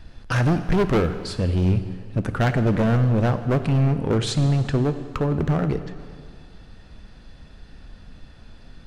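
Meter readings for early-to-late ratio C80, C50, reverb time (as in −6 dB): 12.0 dB, 11.0 dB, 2.0 s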